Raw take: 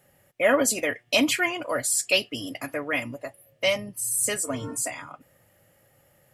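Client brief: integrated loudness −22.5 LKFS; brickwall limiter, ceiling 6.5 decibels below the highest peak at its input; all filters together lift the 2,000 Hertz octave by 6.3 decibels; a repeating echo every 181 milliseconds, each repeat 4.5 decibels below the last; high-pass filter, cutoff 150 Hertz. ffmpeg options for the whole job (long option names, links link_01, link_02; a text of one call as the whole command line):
ffmpeg -i in.wav -af "highpass=150,equalizer=frequency=2000:width_type=o:gain=7.5,alimiter=limit=-11.5dB:level=0:latency=1,aecho=1:1:181|362|543|724|905|1086|1267|1448|1629:0.596|0.357|0.214|0.129|0.0772|0.0463|0.0278|0.0167|0.01" out.wav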